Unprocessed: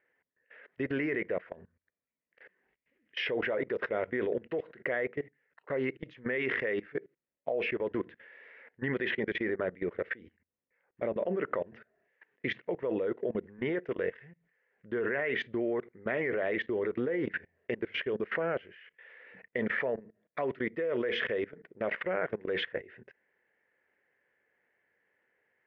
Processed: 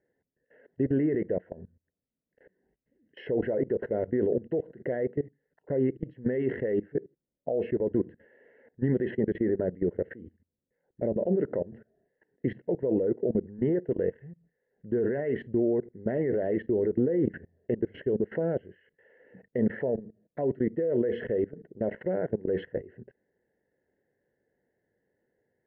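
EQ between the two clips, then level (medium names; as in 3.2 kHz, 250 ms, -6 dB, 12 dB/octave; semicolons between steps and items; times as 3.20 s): boxcar filter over 37 samples; bass shelf 370 Hz +8 dB; +3.5 dB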